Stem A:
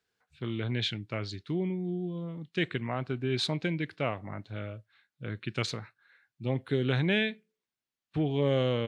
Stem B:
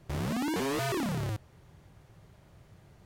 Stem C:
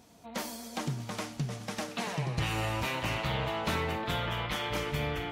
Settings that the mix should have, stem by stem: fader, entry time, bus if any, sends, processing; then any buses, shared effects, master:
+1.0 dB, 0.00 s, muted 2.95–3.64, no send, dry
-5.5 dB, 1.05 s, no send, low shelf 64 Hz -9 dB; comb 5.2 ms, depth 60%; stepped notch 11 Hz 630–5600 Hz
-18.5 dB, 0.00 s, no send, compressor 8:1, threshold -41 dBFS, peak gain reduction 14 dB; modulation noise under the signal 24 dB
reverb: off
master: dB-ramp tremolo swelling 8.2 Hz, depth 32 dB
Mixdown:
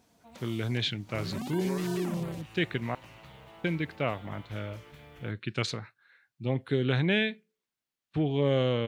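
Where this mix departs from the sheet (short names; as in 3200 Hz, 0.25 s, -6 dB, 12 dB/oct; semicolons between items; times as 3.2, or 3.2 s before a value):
stem C -18.5 dB -> -7.5 dB; master: missing dB-ramp tremolo swelling 8.2 Hz, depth 32 dB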